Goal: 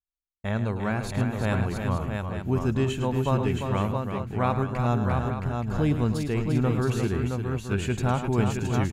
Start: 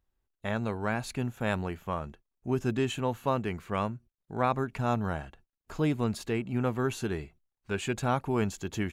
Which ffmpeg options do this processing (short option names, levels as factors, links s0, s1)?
-af "agate=range=0.0224:threshold=0.00251:ratio=3:detection=peak,lowshelf=f=140:g=12,aecho=1:1:106|347|669|874:0.299|0.447|0.562|0.299"